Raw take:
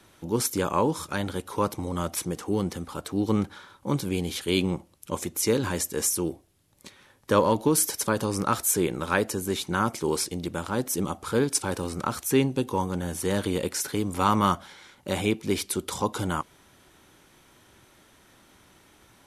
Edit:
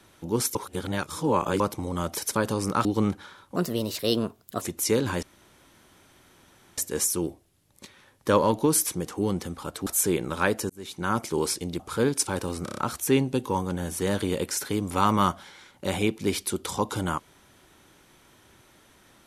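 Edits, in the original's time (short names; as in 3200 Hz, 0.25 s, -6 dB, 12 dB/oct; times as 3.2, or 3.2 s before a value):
0.55–1.6 reverse
2.17–3.17 swap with 7.89–8.57
3.88–5.19 speed 124%
5.8 insert room tone 1.55 s
9.4–9.88 fade in
10.5–11.15 cut
12 stutter 0.03 s, 5 plays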